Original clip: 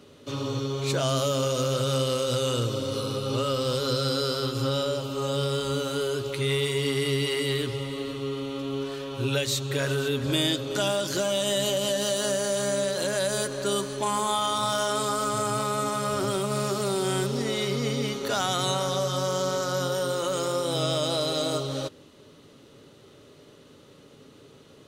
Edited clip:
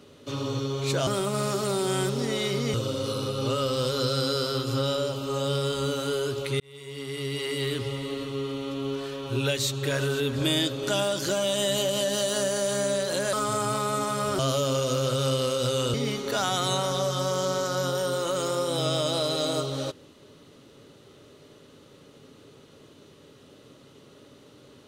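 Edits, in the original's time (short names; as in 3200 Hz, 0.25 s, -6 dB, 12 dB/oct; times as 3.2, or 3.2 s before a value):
1.07–2.62 swap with 16.24–17.91
6.48–7.77 fade in
13.21–15.18 cut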